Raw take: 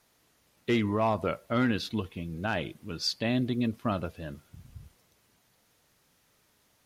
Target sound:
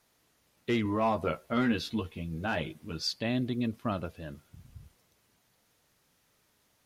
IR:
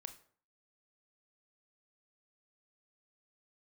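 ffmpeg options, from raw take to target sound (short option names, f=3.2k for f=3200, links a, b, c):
-filter_complex "[0:a]asettb=1/sr,asplit=3[a][b][c];[a]atrim=end=0.844[d];[b]atrim=start=0.84:end=3.02,asetpts=PTS-STARTPTS,afade=t=in:d=0.004:c=qsin,afade=t=out:st=2.176:d=0.004:c=qsin,asplit=2[e][f];[f]adelay=13,volume=-4dB[g];[e][g]amix=inputs=2:normalize=0,atrim=end_sample=96138[h];[c]atrim=start=3.016[i];[d][h]acrossfade=d=0.004:c1=hsin:c2=qsin[j];[j][i]acrossfade=d=0.004:c1=qsin:c2=hsin,volume=-2.5dB"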